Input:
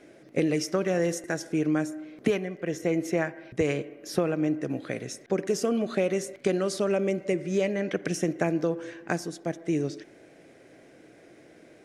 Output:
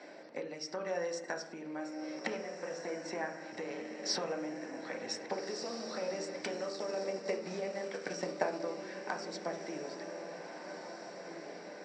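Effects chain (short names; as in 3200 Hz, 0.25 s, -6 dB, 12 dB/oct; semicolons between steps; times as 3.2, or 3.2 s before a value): air absorption 120 m; compressor 6:1, threshold -37 dBFS, peak gain reduction 16.5 dB; tremolo 0.95 Hz, depth 45%; diffused feedback echo 1.669 s, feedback 52%, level -7 dB; 6.57–8.6 transient shaper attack +5 dB, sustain -6 dB; HPF 880 Hz 12 dB/oct; reverb RT60 0.45 s, pre-delay 3 ms, DRR 1.5 dB; gain +4 dB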